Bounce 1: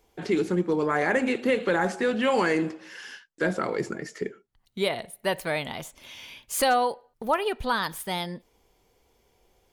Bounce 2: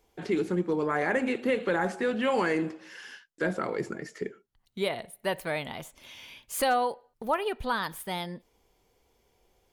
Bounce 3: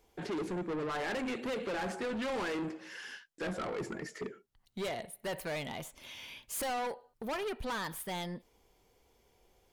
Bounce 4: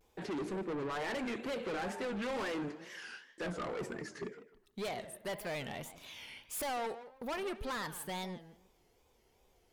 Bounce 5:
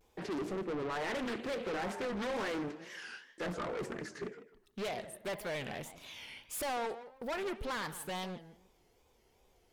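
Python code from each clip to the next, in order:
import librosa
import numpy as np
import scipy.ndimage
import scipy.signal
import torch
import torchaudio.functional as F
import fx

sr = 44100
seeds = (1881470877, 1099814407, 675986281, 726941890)

y1 = fx.dynamic_eq(x, sr, hz=5800.0, q=0.95, threshold_db=-47.0, ratio=4.0, max_db=-4)
y1 = y1 * librosa.db_to_amplitude(-3.0)
y2 = 10.0 ** (-33.0 / 20.0) * np.tanh(y1 / 10.0 ** (-33.0 / 20.0))
y3 = fx.echo_tape(y2, sr, ms=158, feedback_pct=27, wet_db=-11.0, lp_hz=2600.0, drive_db=34.0, wow_cents=11)
y3 = fx.wow_flutter(y3, sr, seeds[0], rate_hz=2.1, depth_cents=130.0)
y3 = y3 * librosa.db_to_amplitude(-2.0)
y4 = fx.doppler_dist(y3, sr, depth_ms=0.51)
y4 = y4 * librosa.db_to_amplitude(1.0)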